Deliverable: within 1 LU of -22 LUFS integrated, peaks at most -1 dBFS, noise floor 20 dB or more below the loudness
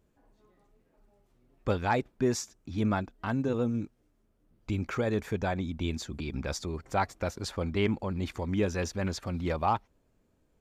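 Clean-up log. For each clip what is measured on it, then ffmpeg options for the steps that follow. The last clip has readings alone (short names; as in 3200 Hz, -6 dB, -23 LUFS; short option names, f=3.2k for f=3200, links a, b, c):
loudness -32.0 LUFS; peak -14.5 dBFS; loudness target -22.0 LUFS
-> -af "volume=10dB"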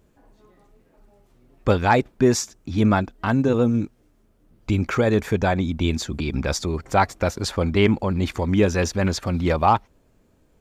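loudness -22.0 LUFS; peak -4.5 dBFS; noise floor -61 dBFS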